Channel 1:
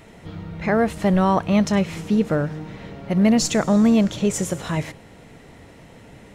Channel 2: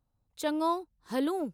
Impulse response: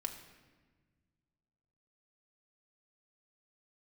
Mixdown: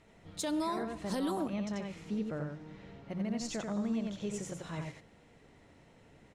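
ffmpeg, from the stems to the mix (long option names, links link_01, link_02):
-filter_complex "[0:a]alimiter=limit=-11dB:level=0:latency=1:release=428,volume=-16dB,asplit=2[link_01][link_02];[link_02]volume=-3.5dB[link_03];[1:a]bass=frequency=250:gain=1,treble=frequency=4000:gain=10,volume=-3dB,asplit=2[link_04][link_05];[link_05]volume=-4.5dB[link_06];[2:a]atrim=start_sample=2205[link_07];[link_06][link_07]afir=irnorm=-1:irlink=0[link_08];[link_03]aecho=0:1:88:1[link_09];[link_01][link_04][link_08][link_09]amix=inputs=4:normalize=0,lowpass=8900,bandreject=frequency=60:width_type=h:width=6,bandreject=frequency=120:width_type=h:width=6,bandreject=frequency=180:width_type=h:width=6,alimiter=level_in=1.5dB:limit=-24dB:level=0:latency=1:release=122,volume=-1.5dB"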